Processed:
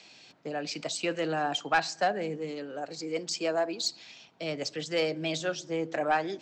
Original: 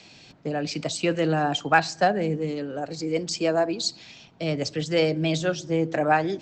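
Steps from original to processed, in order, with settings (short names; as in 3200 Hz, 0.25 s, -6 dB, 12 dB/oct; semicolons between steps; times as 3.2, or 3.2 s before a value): HPF 470 Hz 6 dB/oct; soft clip -13 dBFS, distortion -18 dB; gain -3 dB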